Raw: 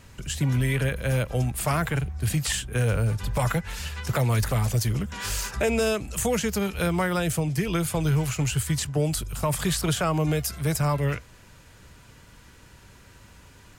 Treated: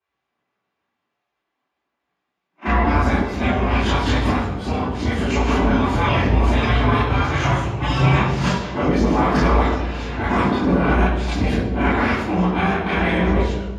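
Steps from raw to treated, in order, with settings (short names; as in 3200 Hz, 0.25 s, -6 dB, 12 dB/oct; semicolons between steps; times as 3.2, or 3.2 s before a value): whole clip reversed; spectral noise reduction 7 dB; gate with hold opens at -26 dBFS; high shelf 2000 Hz -11 dB; limiter -21 dBFS, peak gain reduction 5.5 dB; level quantiser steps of 15 dB; pre-echo 35 ms -13.5 dB; one-sided clip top -28.5 dBFS; spectral gate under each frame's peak -20 dB weak; air absorption 52 m; reverb RT60 1.2 s, pre-delay 3 ms, DRR -11.5 dB; gain +3 dB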